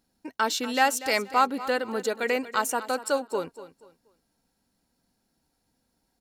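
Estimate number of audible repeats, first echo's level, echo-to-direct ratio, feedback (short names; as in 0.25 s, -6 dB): 2, -15.0 dB, -14.5 dB, 29%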